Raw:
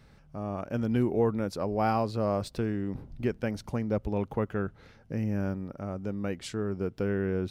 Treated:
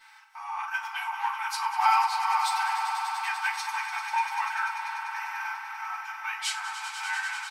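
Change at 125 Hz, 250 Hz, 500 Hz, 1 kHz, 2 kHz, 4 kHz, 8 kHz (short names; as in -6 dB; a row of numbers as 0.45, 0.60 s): under -40 dB, under -40 dB, under -30 dB, +11.0 dB, +14.0 dB, +12.5 dB, +12.5 dB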